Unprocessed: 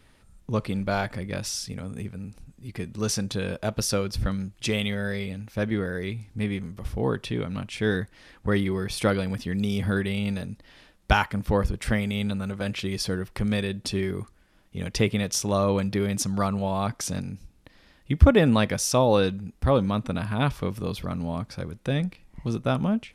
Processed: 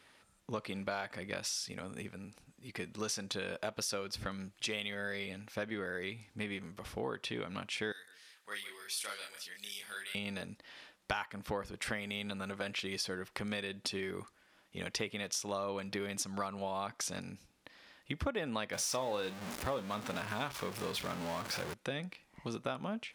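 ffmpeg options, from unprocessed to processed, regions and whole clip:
ffmpeg -i in.wav -filter_complex "[0:a]asettb=1/sr,asplit=3[link_01][link_02][link_03];[link_01]atrim=end=7.924[link_04];[link_02]atrim=start=7.92:end=10.15,asetpts=PTS-STARTPTS,afade=type=in:duration=0.004:curve=qsin,afade=type=out:start_time=2.226:duration=0.004:curve=qsin,aderivative,asplit=2[link_05][link_06];[link_06]adelay=29,volume=-3dB[link_07];[link_05][link_07]amix=inputs=2:normalize=0,atrim=end_sample=98343,asplit=2[link_08][link_09];[link_09]adelay=150,lowpass=frequency=2100:poles=1,volume=-12.5dB,asplit=2[link_10][link_11];[link_11]adelay=150,lowpass=frequency=2100:poles=1,volume=0.32,asplit=2[link_12][link_13];[link_13]adelay=150,lowpass=frequency=2100:poles=1,volume=0.32[link_14];[link_08][link_10][link_12][link_14]amix=inputs=4:normalize=0,atrim=end_sample=98343[link_15];[link_03]atrim=start=10.146[link_16];[link_04][link_15]acrossfade=duration=0.004:curve1=hsin:curve2=qsin[link_17];[link_17][link_16]acrossfade=duration=0.004:curve1=qsin:curve2=hsin,asettb=1/sr,asplit=3[link_18][link_19][link_20];[link_18]atrim=end=18.734[link_21];[link_19]atrim=start=18.73:end=21.74,asetpts=PTS-STARTPTS,afade=type=in:duration=0.004:curve=qsin,afade=type=out:start_time=3.006:duration=0.004:curve=qsin,aeval=exprs='val(0)+0.5*0.0355*sgn(val(0))':channel_layout=same,asplit=2[link_22][link_23];[link_23]adelay=38,volume=-13dB[link_24];[link_22][link_24]amix=inputs=2:normalize=0,atrim=end_sample=132741[link_25];[link_20]atrim=start=21.736[link_26];[link_21][link_25]acrossfade=duration=0.004:curve1=hsin:curve2=qsin[link_27];[link_27][link_26]acrossfade=duration=0.004:curve1=qsin:curve2=hsin,highpass=frequency=720:poles=1,highshelf=frequency=8400:gain=-6.5,acompressor=threshold=-36dB:ratio=4,volume=1dB" out.wav

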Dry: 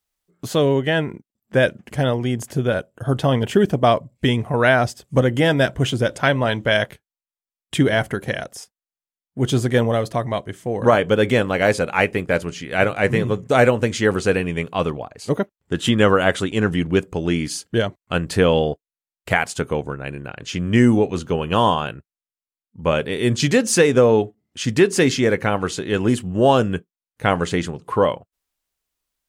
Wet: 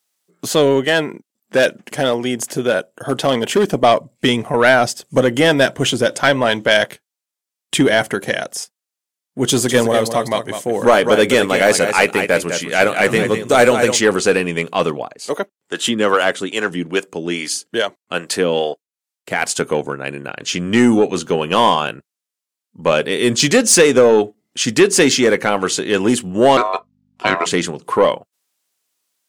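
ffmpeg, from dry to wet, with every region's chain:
ffmpeg -i in.wav -filter_complex "[0:a]asettb=1/sr,asplit=3[link_01][link_02][link_03];[link_01]atrim=end=0.844[link_04];[link_02]atrim=start=0.84:end=3.71,asetpts=PTS-STARTPTS,afade=type=in:duration=0.004:curve=qsin,afade=type=out:start_time=2.866:duration=0.004:curve=qsin,equalizer=frequency=93:width=0.65:gain=-5.5,asoftclip=type=hard:threshold=-12.5dB[link_05];[link_03]atrim=start=3.706[link_06];[link_04][link_05]acrossfade=duration=0.004:curve1=hsin:curve2=qsin[link_07];[link_07][link_06]acrossfade=duration=0.004:curve1=qsin:curve2=hsin,asettb=1/sr,asplit=3[link_08][link_09][link_10];[link_08]atrim=end=9.484[link_11];[link_09]atrim=start=9.48:end=14.01,asetpts=PTS-STARTPTS,afade=type=in:duration=0.004:curve=qsin,afade=type=out:start_time=4.526:duration=0.004:curve=qsin,highshelf=frequency=6900:gain=7,aecho=1:1:202:0.335,atrim=end_sample=199773[link_12];[link_10]atrim=start=14.006[link_13];[link_11][link_12]acrossfade=duration=0.004:curve1=hsin:curve2=qsin[link_14];[link_14][link_13]acrossfade=duration=0.004:curve1=qsin:curve2=hsin,asettb=1/sr,asplit=3[link_15][link_16][link_17];[link_15]atrim=end=15.144[link_18];[link_16]atrim=start=15.14:end=19.42,asetpts=PTS-STARTPTS,afade=type=in:duration=0.004:curve=qsin,afade=type=out:start_time=4.276:duration=0.004:curve=qsin,highpass=frequency=250:poles=1,acrossover=split=430[link_19][link_20];[link_19]aeval=exprs='val(0)*(1-0.7/2+0.7/2*cos(2*PI*2.4*n/s))':channel_layout=same[link_21];[link_20]aeval=exprs='val(0)*(1-0.7/2-0.7/2*cos(2*PI*2.4*n/s))':channel_layout=same[link_22];[link_21][link_22]amix=inputs=2:normalize=0[link_23];[link_17]atrim=start=19.416[link_24];[link_18][link_23]acrossfade=duration=0.004:curve1=hsin:curve2=qsin[link_25];[link_25][link_24]acrossfade=duration=0.004:curve1=qsin:curve2=hsin,asettb=1/sr,asplit=3[link_26][link_27][link_28];[link_26]atrim=end=26.574[link_29];[link_27]atrim=start=26.57:end=27.46,asetpts=PTS-STARTPTS,afade=type=in:duration=0.004:curve=qsin,afade=type=out:start_time=0.886:duration=0.004:curve=qsin,lowpass=4900,aeval=exprs='val(0)*sin(2*PI*850*n/s)':channel_layout=same,aeval=exprs='val(0)+0.00178*(sin(2*PI*50*n/s)+sin(2*PI*2*50*n/s)/2+sin(2*PI*3*50*n/s)/3+sin(2*PI*4*50*n/s)/4+sin(2*PI*5*50*n/s)/5)':channel_layout=same[link_30];[link_28]atrim=start=27.456[link_31];[link_29][link_30]acrossfade=duration=0.004:curve1=hsin:curve2=qsin[link_32];[link_32][link_31]acrossfade=duration=0.004:curve1=qsin:curve2=hsin,highpass=210,equalizer=frequency=7700:width=0.47:gain=5.5,acontrast=73,volume=-1dB" out.wav

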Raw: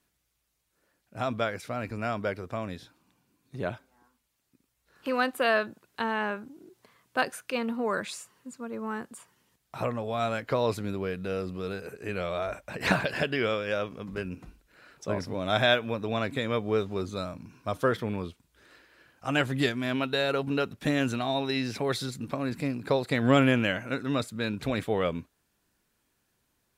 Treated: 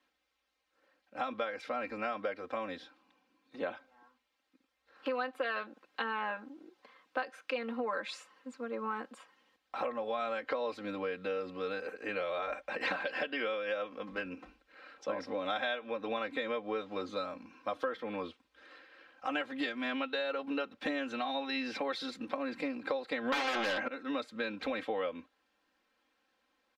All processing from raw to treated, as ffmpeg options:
ffmpeg -i in.wav -filter_complex "[0:a]asettb=1/sr,asplit=3[link_01][link_02][link_03];[link_01]atrim=end=23.324[link_04];[link_02]atrim=start=23.32:end=23.88,asetpts=PTS-STARTPTS,afade=type=in:duration=0.004:curve=qsin,afade=type=out:start_time=0.556:duration=0.004:curve=qsin,adynamicsmooth=sensitivity=6:basefreq=5700,aeval=exprs='0.316*sin(PI/2*7.94*val(0)/0.316)':channel_layout=same[link_05];[link_03]atrim=start=23.876[link_06];[link_04][link_05]acrossfade=duration=0.004:curve1=hsin:curve2=qsin[link_07];[link_07][link_06]acrossfade=duration=0.004:curve1=qsin:curve2=hsin,acrossover=split=310 4600:gain=0.112 1 0.0708[link_08][link_09][link_10];[link_08][link_09][link_10]amix=inputs=3:normalize=0,aecho=1:1:3.8:0.89,acompressor=threshold=-32dB:ratio=6" out.wav

